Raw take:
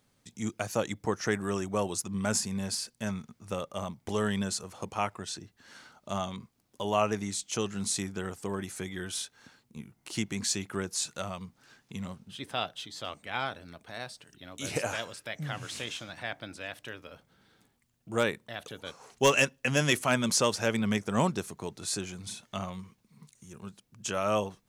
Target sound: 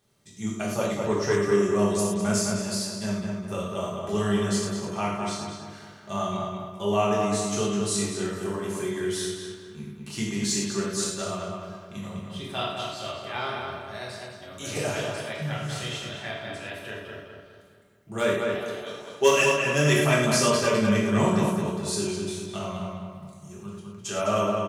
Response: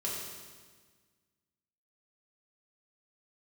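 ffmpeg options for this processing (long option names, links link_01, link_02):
-filter_complex "[0:a]asettb=1/sr,asplit=3[link_01][link_02][link_03];[link_01]atrim=end=18.554[link_04];[link_02]atrim=start=18.55:end=19.35,asetpts=PTS-STARTPTS,afade=type=in:duration=0.004:curve=qsin,afade=type=out:start_time=0.796:duration=0.004:curve=qsin,highpass=190[link_05];[link_03]atrim=start=19.346[link_06];[link_04][link_05]acrossfade=duration=0.004:curve1=hsin:curve2=qsin[link_07];[link_07][link_06]acrossfade=duration=0.004:curve1=qsin:curve2=hsin,asplit=2[link_08][link_09];[link_09]adelay=206,lowpass=frequency=3100:poles=1,volume=-3dB,asplit=2[link_10][link_11];[link_11]adelay=206,lowpass=frequency=3100:poles=1,volume=0.49,asplit=2[link_12][link_13];[link_13]adelay=206,lowpass=frequency=3100:poles=1,volume=0.49,asplit=2[link_14][link_15];[link_15]adelay=206,lowpass=frequency=3100:poles=1,volume=0.49,asplit=2[link_16][link_17];[link_17]adelay=206,lowpass=frequency=3100:poles=1,volume=0.49,asplit=2[link_18][link_19];[link_19]adelay=206,lowpass=frequency=3100:poles=1,volume=0.49[link_20];[link_08][link_10][link_12][link_14][link_16][link_18][link_20]amix=inputs=7:normalize=0[link_21];[1:a]atrim=start_sample=2205,afade=type=out:start_time=0.18:duration=0.01,atrim=end_sample=8379[link_22];[link_21][link_22]afir=irnorm=-1:irlink=0"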